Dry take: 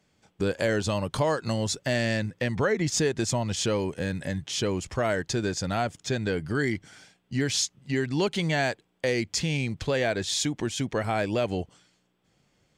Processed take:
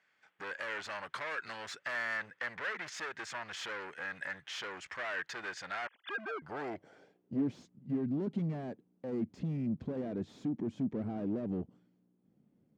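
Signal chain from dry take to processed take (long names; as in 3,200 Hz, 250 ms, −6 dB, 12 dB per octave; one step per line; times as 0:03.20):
0:05.87–0:06.42: three sine waves on the formant tracks
gain into a clipping stage and back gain 30.5 dB
band-pass filter sweep 1,700 Hz → 230 Hz, 0:05.98–0:07.56
level +5 dB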